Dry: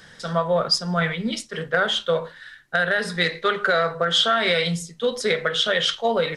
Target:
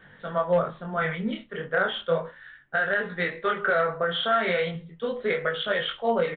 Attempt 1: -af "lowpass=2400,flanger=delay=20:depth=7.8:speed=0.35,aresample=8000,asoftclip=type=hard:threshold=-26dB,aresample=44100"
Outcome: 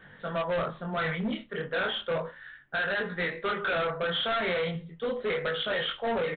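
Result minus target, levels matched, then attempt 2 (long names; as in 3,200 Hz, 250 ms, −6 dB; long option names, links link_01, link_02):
hard clipping: distortion +23 dB
-af "lowpass=2400,flanger=delay=20:depth=7.8:speed=0.35,aresample=8000,asoftclip=type=hard:threshold=-14.5dB,aresample=44100"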